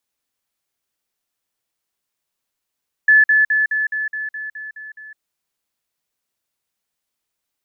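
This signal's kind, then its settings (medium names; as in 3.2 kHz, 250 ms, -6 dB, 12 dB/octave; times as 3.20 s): level ladder 1.73 kHz -7.5 dBFS, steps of -3 dB, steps 10, 0.16 s 0.05 s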